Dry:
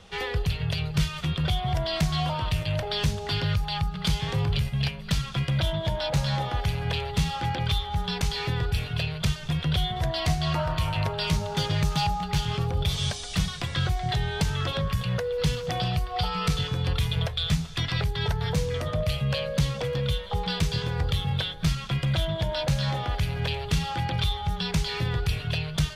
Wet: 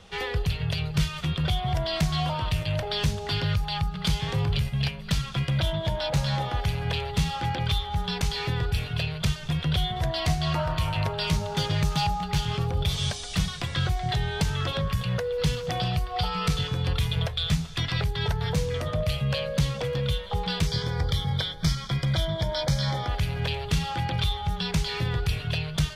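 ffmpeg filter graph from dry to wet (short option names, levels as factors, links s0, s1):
-filter_complex "[0:a]asettb=1/sr,asplit=3[s0][s1][s2];[s0]atrim=end=20.674[s3];[s1]atrim=start=20.67:end=23.08,asetpts=PTS-STARTPTS,afade=t=in:d=0.004:c=qsin,afade=t=out:st=2.406:d=0.004:c=qsin,asuperstop=centerf=2700:order=12:qfactor=5.5,equalizer=f=5300:t=o:w=0.28:g=8.5[s4];[s2]atrim=start=23.076[s5];[s3][s4]acrossfade=d=0.004:c1=hsin:c2=qsin[s6];[s6][s5]acrossfade=d=0.004:c1=qsin:c2=hsin"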